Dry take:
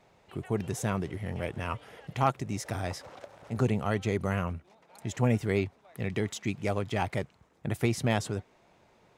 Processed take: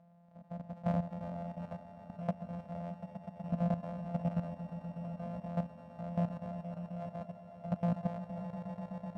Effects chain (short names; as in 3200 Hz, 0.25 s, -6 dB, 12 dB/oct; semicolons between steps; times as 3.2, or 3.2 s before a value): sample sorter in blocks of 256 samples; in parallel at +0.5 dB: upward compressor, threshold -30 dBFS; on the sum: random-step tremolo, depth 80%; double band-pass 350 Hz, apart 1.7 oct; on a send: swelling echo 0.123 s, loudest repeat 5, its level -12.5 dB; on the sum: level quantiser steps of 11 dB; gain +3.5 dB